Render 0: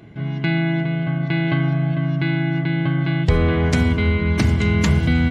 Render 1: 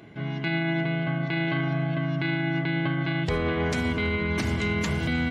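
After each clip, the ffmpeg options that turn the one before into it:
ffmpeg -i in.wav -af "lowshelf=frequency=170:gain=-12,alimiter=limit=-17.5dB:level=0:latency=1:release=48" out.wav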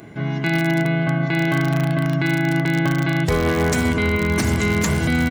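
ffmpeg -i in.wav -filter_complex "[0:a]firequalizer=gain_entry='entry(1600,0);entry(3100,-5);entry(7100,8)':delay=0.05:min_phase=1,asplit=2[link_01][link_02];[link_02]aeval=exprs='(mod(7.94*val(0)+1,2)-1)/7.94':channel_layout=same,volume=-8dB[link_03];[link_01][link_03]amix=inputs=2:normalize=0,volume=4.5dB" out.wav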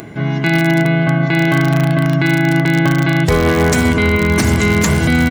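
ffmpeg -i in.wav -af "acompressor=mode=upward:threshold=-35dB:ratio=2.5,volume=6dB" out.wav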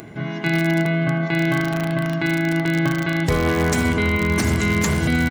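ffmpeg -i in.wav -filter_complex "[0:a]bandreject=frequency=137.6:width_type=h:width=4,bandreject=frequency=275.2:width_type=h:width=4,bandreject=frequency=412.8:width_type=h:width=4,bandreject=frequency=550.4:width_type=h:width=4,bandreject=frequency=688:width_type=h:width=4,bandreject=frequency=825.6:width_type=h:width=4,bandreject=frequency=963.2:width_type=h:width=4,bandreject=frequency=1100.8:width_type=h:width=4,bandreject=frequency=1238.4:width_type=h:width=4,bandreject=frequency=1376:width_type=h:width=4,bandreject=frequency=1513.6:width_type=h:width=4,bandreject=frequency=1651.2:width_type=h:width=4,bandreject=frequency=1788.8:width_type=h:width=4,bandreject=frequency=1926.4:width_type=h:width=4,bandreject=frequency=2064:width_type=h:width=4,bandreject=frequency=2201.6:width_type=h:width=4,bandreject=frequency=2339.2:width_type=h:width=4,bandreject=frequency=2476.8:width_type=h:width=4,bandreject=frequency=2614.4:width_type=h:width=4,bandreject=frequency=2752:width_type=h:width=4,bandreject=frequency=2889.6:width_type=h:width=4,bandreject=frequency=3027.2:width_type=h:width=4,bandreject=frequency=3164.8:width_type=h:width=4,bandreject=frequency=3302.4:width_type=h:width=4,bandreject=frequency=3440:width_type=h:width=4,bandreject=frequency=3577.6:width_type=h:width=4,bandreject=frequency=3715.2:width_type=h:width=4,bandreject=frequency=3852.8:width_type=h:width=4,bandreject=frequency=3990.4:width_type=h:width=4,bandreject=frequency=4128:width_type=h:width=4,bandreject=frequency=4265.6:width_type=h:width=4,bandreject=frequency=4403.2:width_type=h:width=4,bandreject=frequency=4540.8:width_type=h:width=4,bandreject=frequency=4678.4:width_type=h:width=4,bandreject=frequency=4816:width_type=h:width=4,asplit=2[link_01][link_02];[link_02]adelay=80,highpass=300,lowpass=3400,asoftclip=type=hard:threshold=-11dB,volume=-12dB[link_03];[link_01][link_03]amix=inputs=2:normalize=0,volume=-6dB" out.wav

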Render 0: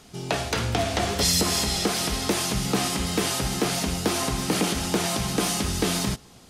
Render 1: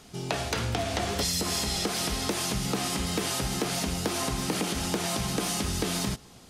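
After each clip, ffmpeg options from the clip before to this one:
ffmpeg -i in.wav -af "acompressor=threshold=-24dB:ratio=6,volume=-1dB" out.wav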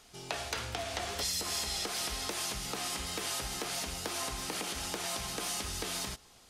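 ffmpeg -i in.wav -af "equalizer=frequency=170:width_type=o:width=2.5:gain=-12,volume=-4.5dB" out.wav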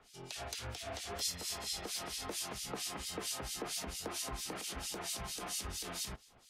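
ffmpeg -i in.wav -filter_complex "[0:a]acrossover=split=180|800|3900[link_01][link_02][link_03][link_04];[link_03]alimiter=level_in=10dB:limit=-24dB:level=0:latency=1:release=38,volume=-10dB[link_05];[link_01][link_02][link_05][link_04]amix=inputs=4:normalize=0,acrossover=split=2300[link_06][link_07];[link_06]aeval=exprs='val(0)*(1-1/2+1/2*cos(2*PI*4.4*n/s))':channel_layout=same[link_08];[link_07]aeval=exprs='val(0)*(1-1/2-1/2*cos(2*PI*4.4*n/s))':channel_layout=same[link_09];[link_08][link_09]amix=inputs=2:normalize=0" out.wav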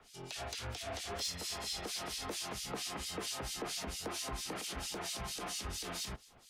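ffmpeg -i in.wav -filter_complex "[0:a]acrossover=split=410|540|6400[link_01][link_02][link_03][link_04];[link_04]alimiter=level_in=17dB:limit=-24dB:level=0:latency=1:release=101,volume=-17dB[link_05];[link_01][link_02][link_03][link_05]amix=inputs=4:normalize=0,asoftclip=type=tanh:threshold=-30.5dB,volume=2dB" out.wav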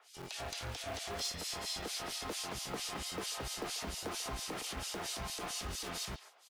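ffmpeg -i in.wav -filter_complex "[0:a]asplit=2[link_01][link_02];[link_02]adelay=140,highpass=300,lowpass=3400,asoftclip=type=hard:threshold=-37.5dB,volume=-10dB[link_03];[link_01][link_03]amix=inputs=2:normalize=0,acrossover=split=490[link_04][link_05];[link_04]acrusher=bits=7:mix=0:aa=0.000001[link_06];[link_06][link_05]amix=inputs=2:normalize=0" out.wav

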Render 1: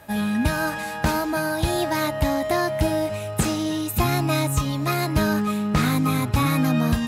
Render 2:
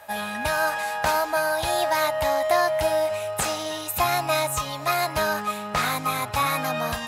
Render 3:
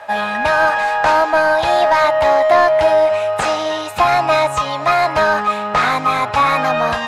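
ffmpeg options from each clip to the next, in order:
ffmpeg -i in.wav -af "lowshelf=frequency=440:width_type=q:width=1.5:gain=-13,volume=1dB" out.wav
ffmpeg -i in.wav -filter_complex "[0:a]asplit=2[link_01][link_02];[link_02]highpass=frequency=720:poles=1,volume=13dB,asoftclip=type=tanh:threshold=-8.5dB[link_03];[link_01][link_03]amix=inputs=2:normalize=0,lowpass=frequency=1300:poles=1,volume=-6dB,lowpass=8300,volume=7.5dB" out.wav

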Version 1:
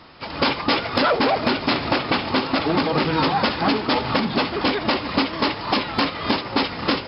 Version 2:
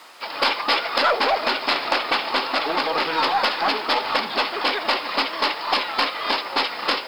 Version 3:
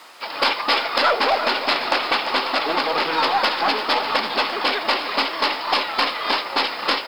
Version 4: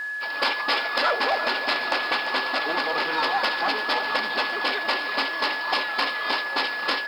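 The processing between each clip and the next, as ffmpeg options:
ffmpeg -i in.wav -af "acrusher=bits=7:mix=0:aa=0.5,highpass=600,aeval=exprs='0.447*(cos(1*acos(clip(val(0)/0.447,-1,1)))-cos(1*PI/2))+0.0708*(cos(3*acos(clip(val(0)/0.447,-1,1)))-cos(3*PI/2))+0.0316*(cos(5*acos(clip(val(0)/0.447,-1,1)))-cos(5*PI/2))+0.00501*(cos(6*acos(clip(val(0)/0.447,-1,1)))-cos(6*PI/2))':channel_layout=same,volume=3.5dB" out.wav
ffmpeg -i in.wav -af "aecho=1:1:343:0.282,volume=1dB" out.wav
ffmpeg -i in.wav -af "lowshelf=frequency=66:gain=-10,aeval=exprs='val(0)+0.0708*sin(2*PI*1700*n/s)':channel_layout=same,volume=-5dB" out.wav

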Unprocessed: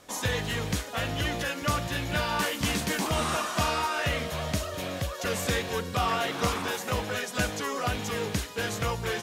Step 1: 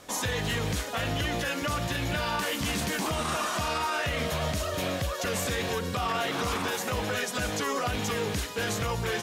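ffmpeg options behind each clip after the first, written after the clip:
ffmpeg -i in.wav -af "alimiter=level_in=0.5dB:limit=-24dB:level=0:latency=1:release=49,volume=-0.5dB,volume=4dB" out.wav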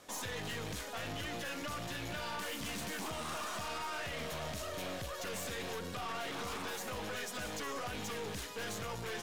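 ffmpeg -i in.wav -af "lowshelf=frequency=94:gain=-9,aeval=exprs='(tanh(35.5*val(0)+0.45)-tanh(0.45))/35.5':channel_layout=same,volume=-5.5dB" out.wav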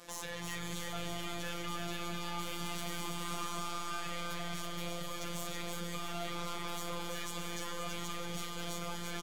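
ffmpeg -i in.wav -af "alimiter=level_in=14.5dB:limit=-24dB:level=0:latency=1,volume=-14.5dB,afftfilt=real='hypot(re,im)*cos(PI*b)':imag='0':win_size=1024:overlap=0.75,aecho=1:1:330|528|646.8|718.1|760.8:0.631|0.398|0.251|0.158|0.1,volume=6.5dB" out.wav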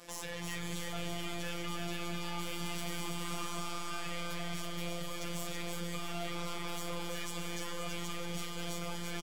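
ffmpeg -i in.wav -filter_complex "[0:a]asplit=2[link_01][link_02];[link_02]adelay=12,volume=-11dB[link_03];[link_01][link_03]amix=inputs=2:normalize=0" out.wav

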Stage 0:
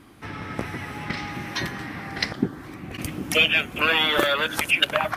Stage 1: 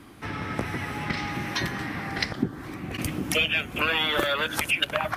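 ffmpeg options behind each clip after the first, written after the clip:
ffmpeg -i in.wav -filter_complex "[0:a]acrossover=split=130[link_01][link_02];[link_02]acompressor=threshold=-28dB:ratio=2[link_03];[link_01][link_03]amix=inputs=2:normalize=0,volume=2dB" out.wav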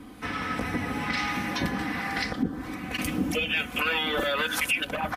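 ffmpeg -i in.wav -filter_complex "[0:a]aecho=1:1:4:0.6,alimiter=limit=-18dB:level=0:latency=1:release=26,acrossover=split=820[link_01][link_02];[link_01]aeval=exprs='val(0)*(1-0.5/2+0.5/2*cos(2*PI*1.2*n/s))':channel_layout=same[link_03];[link_02]aeval=exprs='val(0)*(1-0.5/2-0.5/2*cos(2*PI*1.2*n/s))':channel_layout=same[link_04];[link_03][link_04]amix=inputs=2:normalize=0,volume=3dB" out.wav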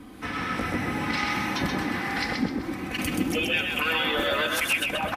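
ffmpeg -i in.wav -filter_complex "[0:a]asplit=6[link_01][link_02][link_03][link_04][link_05][link_06];[link_02]adelay=129,afreqshift=36,volume=-4dB[link_07];[link_03]adelay=258,afreqshift=72,volume=-12.2dB[link_08];[link_04]adelay=387,afreqshift=108,volume=-20.4dB[link_09];[link_05]adelay=516,afreqshift=144,volume=-28.5dB[link_10];[link_06]adelay=645,afreqshift=180,volume=-36.7dB[link_11];[link_01][link_07][link_08][link_09][link_10][link_11]amix=inputs=6:normalize=0" out.wav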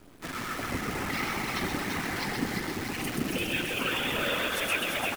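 ffmpeg -i in.wav -af "aecho=1:1:340|646|921.4|1169|1392:0.631|0.398|0.251|0.158|0.1,afftfilt=real='hypot(re,im)*cos(2*PI*random(0))':imag='hypot(re,im)*sin(2*PI*random(1))':win_size=512:overlap=0.75,acrusher=bits=7:dc=4:mix=0:aa=0.000001" out.wav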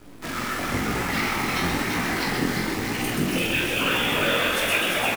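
ffmpeg -i in.wav -filter_complex "[0:a]flanger=delay=16.5:depth=7.9:speed=1,asplit=2[link_01][link_02];[link_02]adelay=46,volume=-5.5dB[link_03];[link_01][link_03]amix=inputs=2:normalize=0,volume=8.5dB" out.wav

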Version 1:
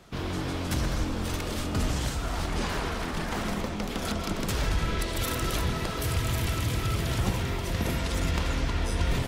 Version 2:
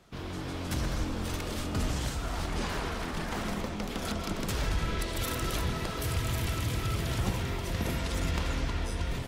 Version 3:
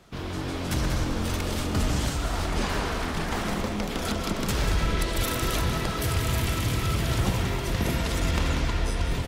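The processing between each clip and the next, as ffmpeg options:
ffmpeg -i in.wav -af "dynaudnorm=framelen=130:gausssize=9:maxgain=3.5dB,volume=-6.5dB" out.wav
ffmpeg -i in.wav -af "aecho=1:1:189:0.376,volume=5dB" out.wav

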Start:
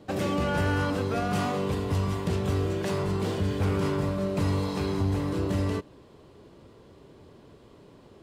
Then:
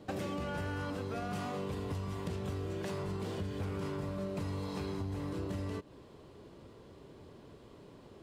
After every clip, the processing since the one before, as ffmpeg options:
ffmpeg -i in.wav -af "acompressor=threshold=-33dB:ratio=6,volume=-2dB" out.wav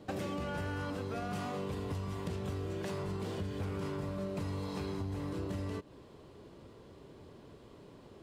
ffmpeg -i in.wav -af anull out.wav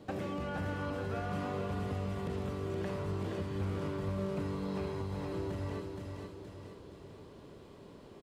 ffmpeg -i in.wav -filter_complex "[0:a]aecho=1:1:470|940|1410|1880|2350:0.531|0.239|0.108|0.0484|0.0218,acrossover=split=2900[link_01][link_02];[link_02]acompressor=threshold=-58dB:ratio=4:attack=1:release=60[link_03];[link_01][link_03]amix=inputs=2:normalize=0" out.wav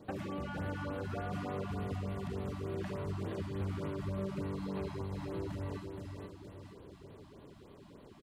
ffmpeg -i in.wav -af "afftfilt=real='re*(1-between(b*sr/1024,410*pow(6800/410,0.5+0.5*sin(2*PI*3.4*pts/sr))/1.41,410*pow(6800/410,0.5+0.5*sin(2*PI*3.4*pts/sr))*1.41))':imag='im*(1-between(b*sr/1024,410*pow(6800/410,0.5+0.5*sin(2*PI*3.4*pts/sr))/1.41,410*pow(6800/410,0.5+0.5*sin(2*PI*3.4*pts/sr))*1.41))':win_size=1024:overlap=0.75,volume=-1.5dB" out.wav

